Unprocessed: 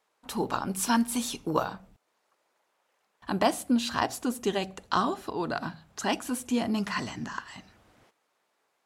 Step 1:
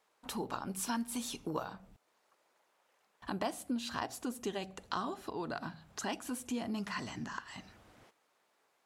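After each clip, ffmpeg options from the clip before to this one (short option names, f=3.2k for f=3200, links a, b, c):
-af "acompressor=threshold=-42dB:ratio=2"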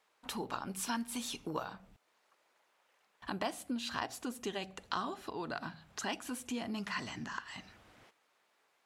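-af "equalizer=f=2.5k:w=0.58:g=5,volume=-2dB"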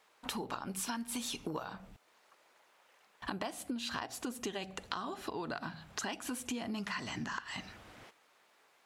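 -af "acompressor=threshold=-42dB:ratio=6,volume=6.5dB"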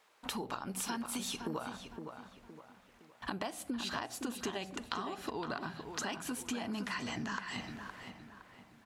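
-filter_complex "[0:a]asplit=2[a][b];[b]adelay=514,lowpass=f=2.5k:p=1,volume=-7dB,asplit=2[c][d];[d]adelay=514,lowpass=f=2.5k:p=1,volume=0.4,asplit=2[e][f];[f]adelay=514,lowpass=f=2.5k:p=1,volume=0.4,asplit=2[g][h];[h]adelay=514,lowpass=f=2.5k:p=1,volume=0.4,asplit=2[i][j];[j]adelay=514,lowpass=f=2.5k:p=1,volume=0.4[k];[a][c][e][g][i][k]amix=inputs=6:normalize=0"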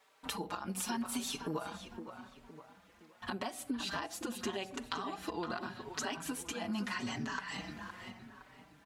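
-filter_complex "[0:a]asplit=2[a][b];[b]adelay=4.8,afreqshift=0.83[c];[a][c]amix=inputs=2:normalize=1,volume=3dB"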